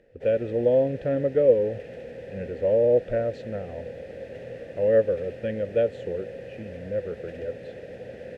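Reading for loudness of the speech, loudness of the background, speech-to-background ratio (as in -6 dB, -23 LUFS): -25.0 LUFS, -40.0 LUFS, 15.0 dB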